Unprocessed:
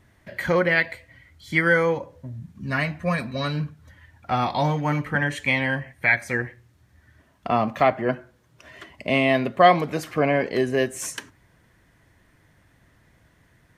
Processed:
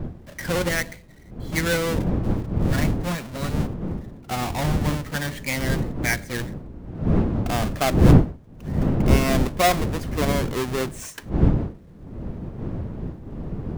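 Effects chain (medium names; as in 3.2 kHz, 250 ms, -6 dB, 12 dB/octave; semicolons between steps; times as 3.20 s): square wave that keeps the level; wind noise 200 Hz -16 dBFS; trim -8 dB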